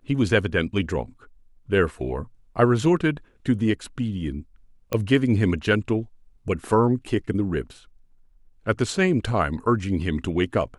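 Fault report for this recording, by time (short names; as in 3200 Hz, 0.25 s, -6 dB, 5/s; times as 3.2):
4.93 pop -11 dBFS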